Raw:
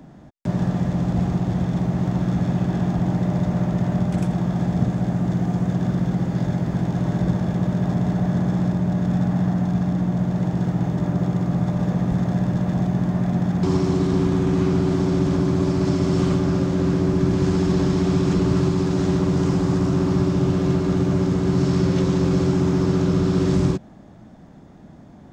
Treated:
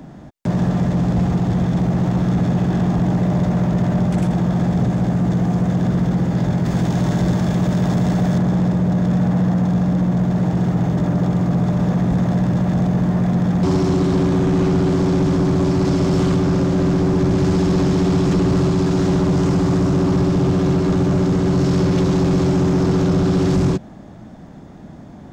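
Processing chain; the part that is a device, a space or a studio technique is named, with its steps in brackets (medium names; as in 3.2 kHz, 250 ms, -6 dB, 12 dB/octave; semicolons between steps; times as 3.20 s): saturation between pre-emphasis and de-emphasis (treble shelf 2.2 kHz +11.5 dB; saturation -17.5 dBFS, distortion -13 dB; treble shelf 2.2 kHz -11.5 dB); 6.65–8.38 s: treble shelf 2.8 kHz +8.5 dB; trim +6.5 dB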